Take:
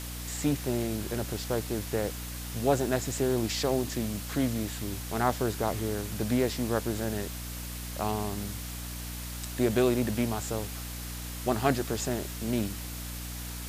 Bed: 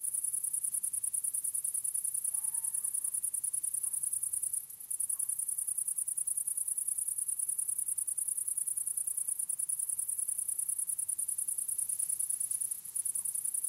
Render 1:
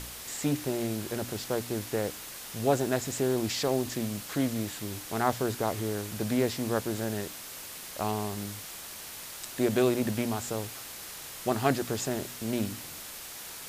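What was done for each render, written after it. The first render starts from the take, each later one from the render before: de-hum 60 Hz, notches 5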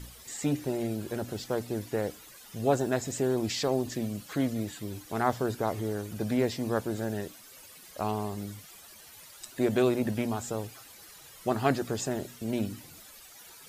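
noise reduction 13 dB, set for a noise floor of -43 dBFS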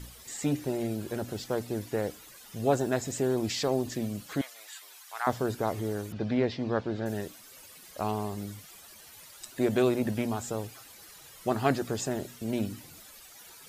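4.41–5.27 s: high-pass 890 Hz 24 dB/octave; 6.12–7.06 s: low-pass 4.6 kHz 24 dB/octave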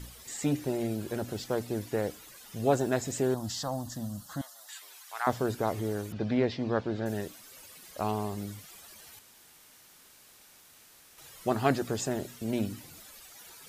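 3.34–4.69 s: static phaser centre 970 Hz, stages 4; 9.19–11.18 s: room tone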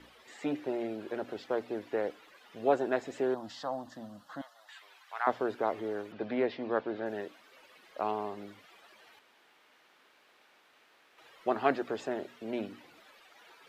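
three-band isolator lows -22 dB, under 270 Hz, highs -24 dB, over 3.5 kHz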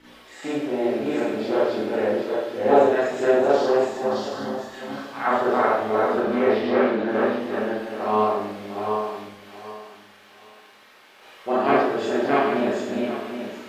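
backward echo that repeats 387 ms, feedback 47%, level -0.5 dB; Schroeder reverb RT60 0.72 s, combs from 29 ms, DRR -9 dB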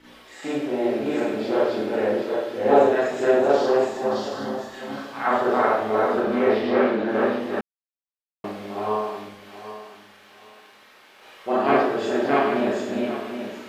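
7.61–8.44 s: mute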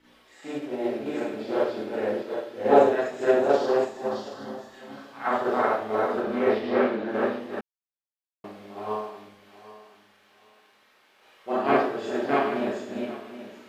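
upward expansion 1.5:1, over -31 dBFS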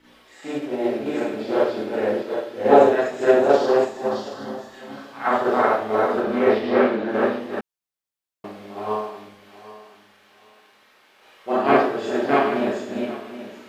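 trim +5 dB; peak limiter -1 dBFS, peak gain reduction 2 dB

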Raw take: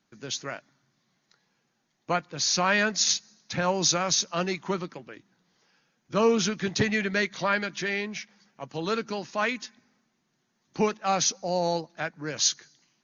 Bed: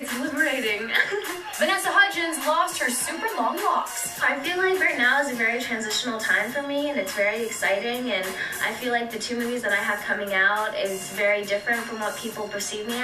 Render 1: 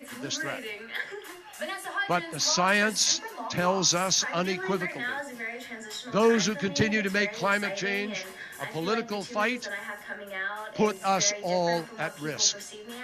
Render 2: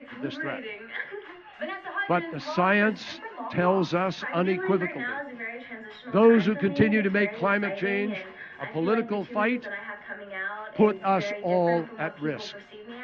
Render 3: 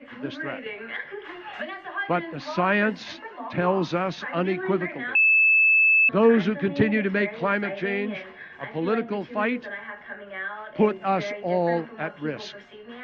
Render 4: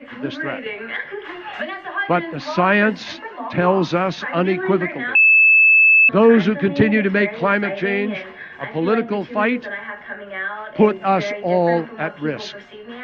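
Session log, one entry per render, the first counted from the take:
add bed -12.5 dB
low-pass 2.9 kHz 24 dB/octave; dynamic bell 290 Hz, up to +7 dB, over -41 dBFS, Q 0.86
0.66–1.83 s: three bands compressed up and down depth 100%; 5.15–6.09 s: bleep 2.62 kHz -14.5 dBFS
trim +6.5 dB; peak limiter -3 dBFS, peak gain reduction 2 dB

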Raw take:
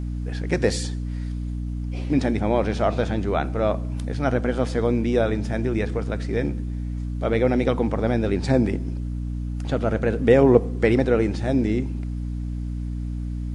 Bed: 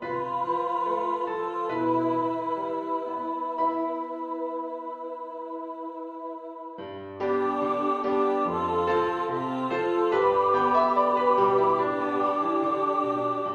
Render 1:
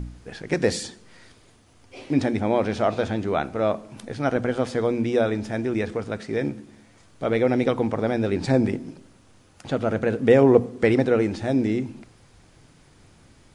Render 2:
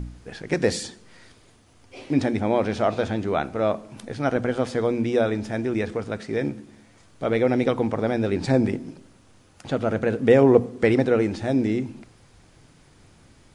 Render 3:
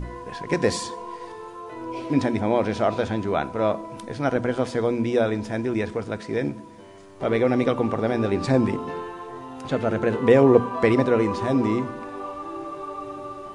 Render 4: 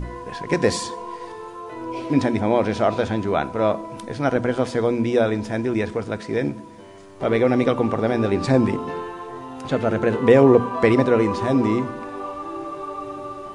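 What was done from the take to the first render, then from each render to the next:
de-hum 60 Hz, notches 5
no audible change
add bed -8.5 dB
trim +2.5 dB; peak limiter -2 dBFS, peak gain reduction 3 dB

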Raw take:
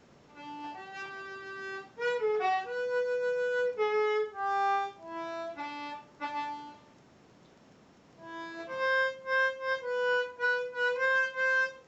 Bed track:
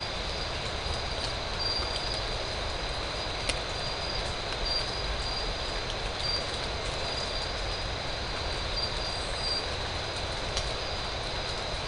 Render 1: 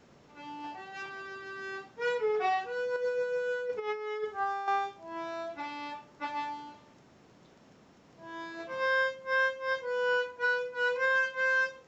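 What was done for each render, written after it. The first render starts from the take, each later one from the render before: 2.96–4.68 s: compressor with a negative ratio -32 dBFS, ratio -0.5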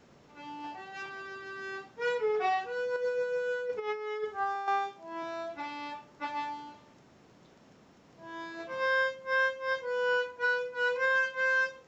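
4.55–5.23 s: high-pass 130 Hz 24 dB/octave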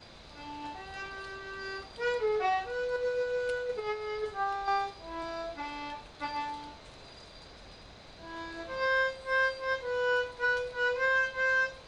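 add bed track -19 dB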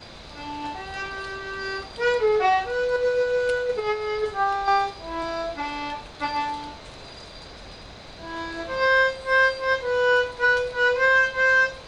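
trim +9 dB

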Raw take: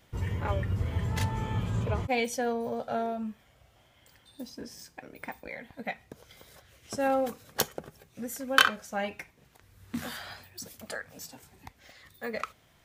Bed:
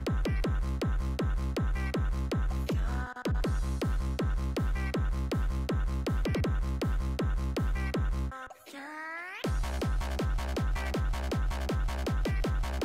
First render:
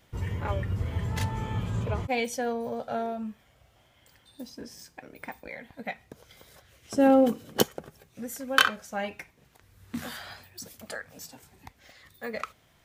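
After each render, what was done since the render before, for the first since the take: 6.96–7.63 s: small resonant body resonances 220/320/3000 Hz, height 12 dB, ringing for 20 ms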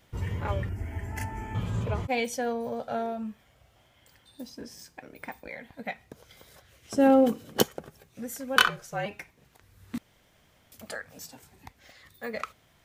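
0.69–1.55 s: static phaser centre 760 Hz, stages 8; 8.56–9.06 s: frequency shift -49 Hz; 9.98–10.72 s: room tone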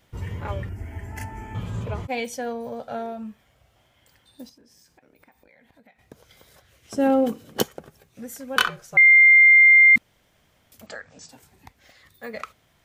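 4.49–5.99 s: compression, threshold -53 dBFS; 8.97–9.96 s: bleep 2.1 kHz -9 dBFS; 10.86–11.29 s: steep low-pass 7.9 kHz 72 dB/octave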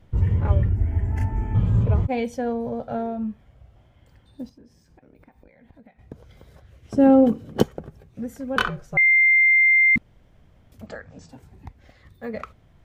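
tilt EQ -3.5 dB/octave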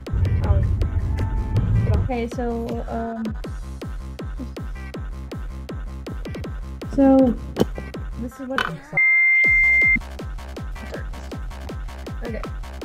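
add bed -1 dB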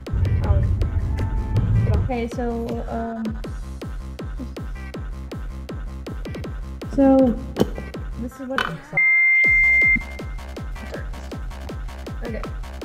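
two-slope reverb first 0.86 s, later 2.7 s, DRR 16.5 dB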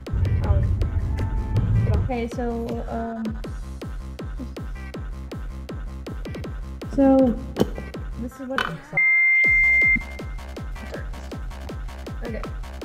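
trim -1.5 dB

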